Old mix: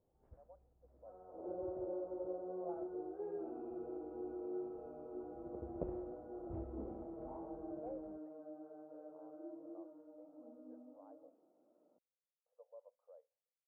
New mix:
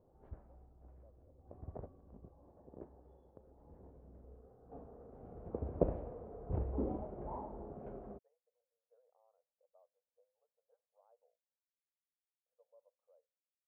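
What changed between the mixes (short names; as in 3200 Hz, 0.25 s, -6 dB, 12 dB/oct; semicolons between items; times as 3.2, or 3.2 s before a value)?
speech -9.5 dB; first sound +11.0 dB; second sound: muted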